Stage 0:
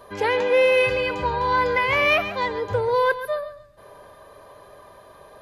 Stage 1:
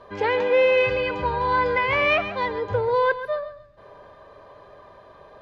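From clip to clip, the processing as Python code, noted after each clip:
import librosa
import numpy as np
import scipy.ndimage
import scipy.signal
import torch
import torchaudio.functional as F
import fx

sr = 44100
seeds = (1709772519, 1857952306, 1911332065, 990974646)

y = fx.air_absorb(x, sr, metres=140.0)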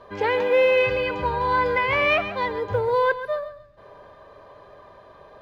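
y = fx.quant_float(x, sr, bits=6)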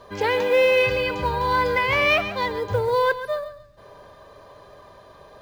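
y = fx.bass_treble(x, sr, bass_db=3, treble_db=13)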